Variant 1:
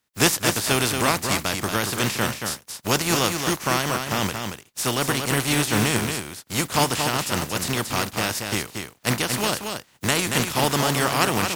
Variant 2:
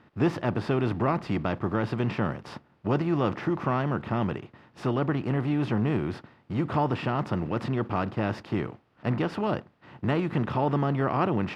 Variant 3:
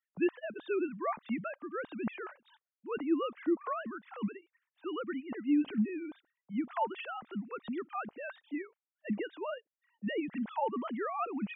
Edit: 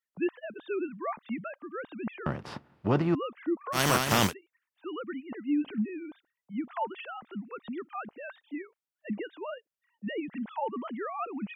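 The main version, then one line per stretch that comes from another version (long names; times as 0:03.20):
3
0:02.26–0:03.15: punch in from 2
0:03.77–0:04.29: punch in from 1, crossfade 0.10 s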